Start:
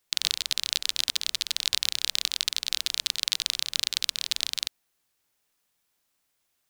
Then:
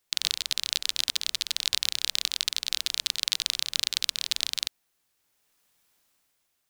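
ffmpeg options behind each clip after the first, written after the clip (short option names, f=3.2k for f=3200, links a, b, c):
-af "dynaudnorm=f=210:g=7:m=8dB,volume=-1dB"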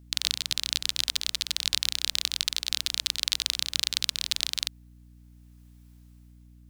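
-af "aeval=exprs='val(0)+0.00282*(sin(2*PI*60*n/s)+sin(2*PI*2*60*n/s)/2+sin(2*PI*3*60*n/s)/3+sin(2*PI*4*60*n/s)/4+sin(2*PI*5*60*n/s)/5)':c=same"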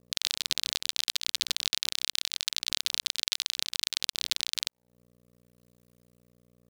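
-af "alimiter=limit=-8dB:level=0:latency=1:release=367,aeval=exprs='sgn(val(0))*max(abs(val(0))-0.00316,0)':c=same,volume=2dB"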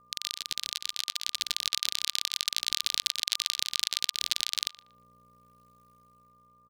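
-filter_complex "[0:a]dynaudnorm=f=570:g=5:m=11.5dB,aeval=exprs='val(0)+0.00178*sin(2*PI*1200*n/s)':c=same,asplit=2[a][b];[b]adelay=118,lowpass=f=2.2k:p=1,volume=-16.5dB,asplit=2[c][d];[d]adelay=118,lowpass=f=2.2k:p=1,volume=0.31,asplit=2[e][f];[f]adelay=118,lowpass=f=2.2k:p=1,volume=0.31[g];[a][c][e][g]amix=inputs=4:normalize=0,volume=-4dB"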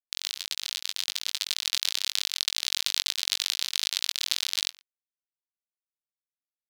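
-filter_complex "[0:a]aeval=exprs='sgn(val(0))*max(abs(val(0))-0.00944,0)':c=same,asplit=2[a][b];[b]adelay=21,volume=-8dB[c];[a][c]amix=inputs=2:normalize=0,volume=1.5dB"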